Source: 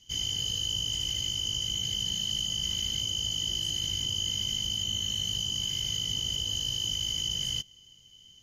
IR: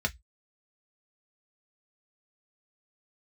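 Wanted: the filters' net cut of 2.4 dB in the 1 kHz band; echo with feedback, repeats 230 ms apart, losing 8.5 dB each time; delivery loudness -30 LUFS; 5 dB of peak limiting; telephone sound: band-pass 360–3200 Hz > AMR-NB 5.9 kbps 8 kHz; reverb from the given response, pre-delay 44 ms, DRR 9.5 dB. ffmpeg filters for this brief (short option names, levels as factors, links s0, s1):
-filter_complex "[0:a]equalizer=f=1000:t=o:g=-3,alimiter=level_in=1.06:limit=0.0631:level=0:latency=1,volume=0.944,aecho=1:1:230|460|690|920:0.376|0.143|0.0543|0.0206,asplit=2[s0][s1];[1:a]atrim=start_sample=2205,adelay=44[s2];[s1][s2]afir=irnorm=-1:irlink=0,volume=0.15[s3];[s0][s3]amix=inputs=2:normalize=0,highpass=360,lowpass=3200,volume=2.82" -ar 8000 -c:a libopencore_amrnb -b:a 5900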